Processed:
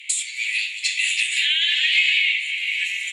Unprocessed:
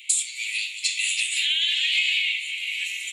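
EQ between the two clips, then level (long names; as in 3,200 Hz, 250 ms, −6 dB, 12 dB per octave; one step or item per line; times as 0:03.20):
high-pass with resonance 1,700 Hz, resonance Q 3.9
Bessel low-pass filter 9,900 Hz, order 2
0.0 dB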